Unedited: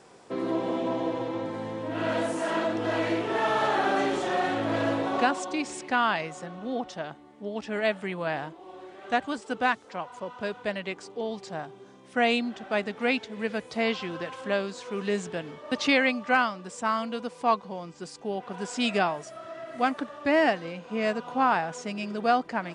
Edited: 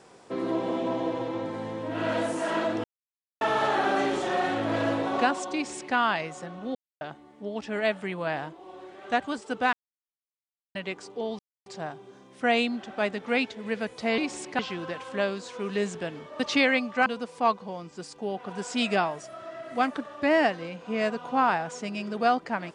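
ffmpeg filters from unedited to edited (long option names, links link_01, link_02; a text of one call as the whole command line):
ffmpeg -i in.wav -filter_complex "[0:a]asplit=11[link_01][link_02][link_03][link_04][link_05][link_06][link_07][link_08][link_09][link_10][link_11];[link_01]atrim=end=2.84,asetpts=PTS-STARTPTS,afade=type=out:start_time=2.836:duration=0.004:curve=hsin[link_12];[link_02]atrim=start=2.84:end=3.41,asetpts=PTS-STARTPTS,volume=0[link_13];[link_03]atrim=start=3.41:end=6.75,asetpts=PTS-STARTPTS,afade=type=in:duration=0.004:curve=hsin,afade=type=out:start_time=3.336:duration=0.004:curve=hsin[link_14];[link_04]atrim=start=6.75:end=7.01,asetpts=PTS-STARTPTS,volume=0[link_15];[link_05]atrim=start=7.01:end=9.73,asetpts=PTS-STARTPTS,afade=type=in:duration=0.004:curve=hsin,afade=type=out:start_time=2.716:duration=0.004:curve=hsin[link_16];[link_06]atrim=start=9.73:end=10.75,asetpts=PTS-STARTPTS,volume=0[link_17];[link_07]atrim=start=10.75:end=11.39,asetpts=PTS-STARTPTS,afade=type=in:duration=0.004:curve=hsin,afade=type=out:start_time=0.636:duration=0.004:curve=hsin,apad=pad_dur=0.27[link_18];[link_08]atrim=start=11.39:end=13.912,asetpts=PTS-STARTPTS,afade=type=in:duration=0.004:curve=hsin[link_19];[link_09]atrim=start=5.538:end=5.952[link_20];[link_10]atrim=start=13.908:end=16.382[link_21];[link_11]atrim=start=17.088[link_22];[link_12][link_13][link_14][link_15][link_16][link_17][link_18][link_19]concat=n=8:v=0:a=1[link_23];[link_23][link_20]acrossfade=duration=0.004:curve1=hsin:curve2=hsin[link_24];[link_24][link_21]acrossfade=duration=0.004:curve1=hsin:curve2=hsin[link_25];[link_25][link_22]acrossfade=duration=0.004:curve1=hsin:curve2=hsin" out.wav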